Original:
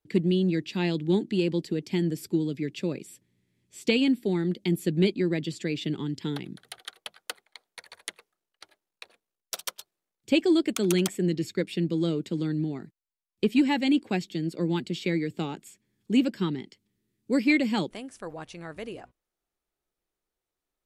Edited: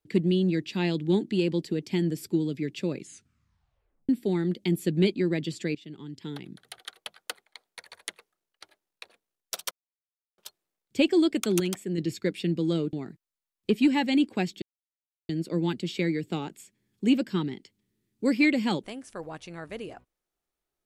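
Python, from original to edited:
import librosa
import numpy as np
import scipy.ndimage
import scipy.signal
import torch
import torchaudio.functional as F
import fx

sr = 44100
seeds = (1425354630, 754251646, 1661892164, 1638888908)

y = fx.edit(x, sr, fx.tape_stop(start_s=2.96, length_s=1.13),
    fx.fade_in_from(start_s=5.75, length_s=1.23, floor_db=-18.5),
    fx.insert_silence(at_s=9.71, length_s=0.67),
    fx.clip_gain(start_s=10.93, length_s=0.38, db=-5.0),
    fx.cut(start_s=12.26, length_s=0.41),
    fx.insert_silence(at_s=14.36, length_s=0.67), tone=tone)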